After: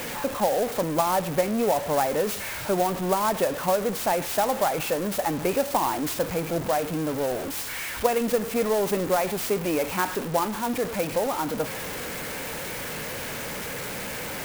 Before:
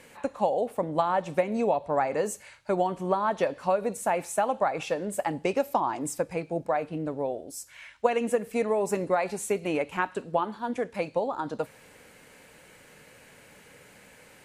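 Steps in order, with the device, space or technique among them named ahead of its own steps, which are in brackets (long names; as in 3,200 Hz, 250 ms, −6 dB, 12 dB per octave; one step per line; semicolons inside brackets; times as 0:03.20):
early CD player with a faulty converter (converter with a step at zero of −27.5 dBFS; converter with an unsteady clock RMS 0.051 ms)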